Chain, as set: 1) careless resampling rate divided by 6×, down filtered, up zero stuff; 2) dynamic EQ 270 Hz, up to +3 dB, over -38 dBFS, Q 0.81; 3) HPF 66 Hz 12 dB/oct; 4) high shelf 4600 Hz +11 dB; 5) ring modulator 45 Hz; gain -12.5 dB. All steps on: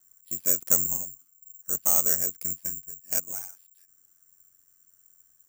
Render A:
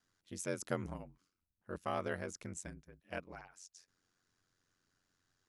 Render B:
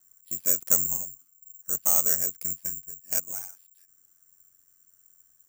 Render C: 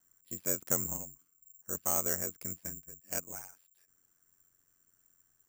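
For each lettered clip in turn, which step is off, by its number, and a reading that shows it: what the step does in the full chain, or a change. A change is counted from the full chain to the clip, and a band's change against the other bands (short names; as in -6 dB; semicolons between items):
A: 1, 8 kHz band -23.0 dB; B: 2, 250 Hz band -2.0 dB; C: 4, 8 kHz band -7.5 dB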